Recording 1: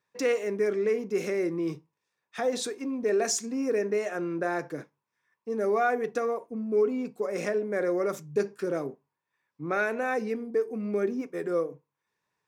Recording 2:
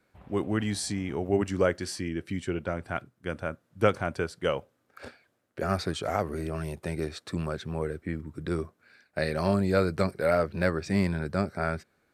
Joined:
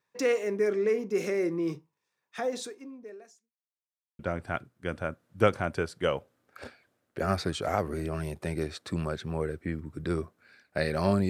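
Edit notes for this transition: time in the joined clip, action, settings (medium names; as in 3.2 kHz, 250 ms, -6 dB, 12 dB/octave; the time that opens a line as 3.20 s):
recording 1
2.26–3.53 s: fade out quadratic
3.53–4.19 s: mute
4.19 s: go over to recording 2 from 2.60 s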